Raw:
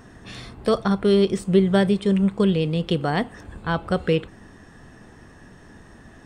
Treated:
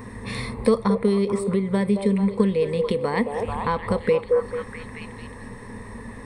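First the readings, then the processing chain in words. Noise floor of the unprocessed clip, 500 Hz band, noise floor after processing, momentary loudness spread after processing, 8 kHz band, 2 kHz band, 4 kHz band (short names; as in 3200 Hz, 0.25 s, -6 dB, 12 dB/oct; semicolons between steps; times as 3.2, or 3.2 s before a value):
-48 dBFS, +0.5 dB, -39 dBFS, 18 LU, n/a, -1.5 dB, -6.5 dB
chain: bell 4700 Hz -10 dB 0.34 oct; delay with a stepping band-pass 0.219 s, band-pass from 570 Hz, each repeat 0.7 oct, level -5 dB; compressor 4:1, threshold -28 dBFS, peak gain reduction 14.5 dB; ripple EQ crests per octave 0.93, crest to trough 14 dB; gain +6 dB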